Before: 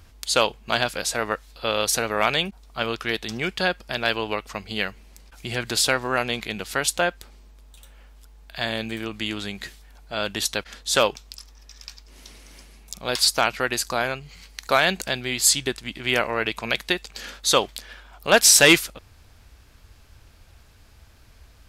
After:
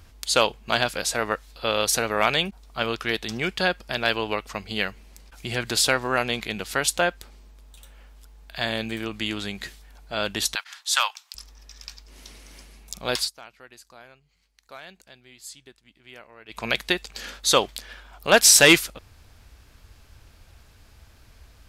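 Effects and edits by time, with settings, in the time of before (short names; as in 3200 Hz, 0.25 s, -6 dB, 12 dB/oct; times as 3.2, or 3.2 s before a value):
10.55–11.35 steep high-pass 840 Hz
13.16–16.62 dip -23.5 dB, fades 0.14 s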